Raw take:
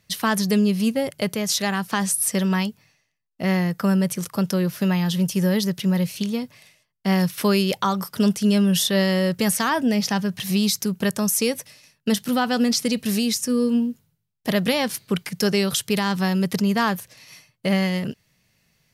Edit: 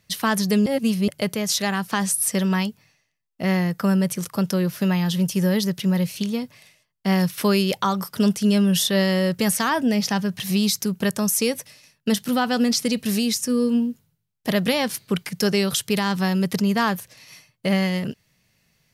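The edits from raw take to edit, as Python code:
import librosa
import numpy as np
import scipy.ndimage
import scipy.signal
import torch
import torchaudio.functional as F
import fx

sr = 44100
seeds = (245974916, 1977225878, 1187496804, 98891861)

y = fx.edit(x, sr, fx.reverse_span(start_s=0.66, length_s=0.42), tone=tone)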